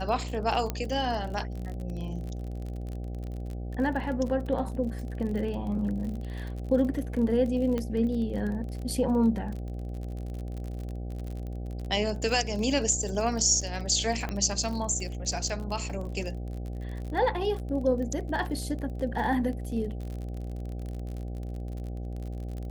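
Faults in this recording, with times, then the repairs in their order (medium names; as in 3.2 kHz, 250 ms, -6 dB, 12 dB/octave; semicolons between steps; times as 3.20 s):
buzz 60 Hz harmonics 13 -35 dBFS
crackle 40 per s -35 dBFS
0.70 s: pop -15 dBFS
7.78 s: pop -19 dBFS
14.29 s: pop -19 dBFS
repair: de-click; de-hum 60 Hz, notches 13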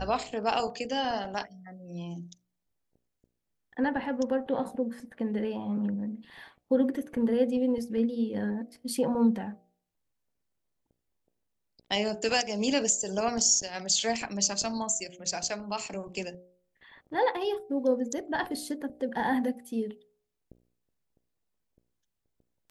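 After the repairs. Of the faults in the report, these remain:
nothing left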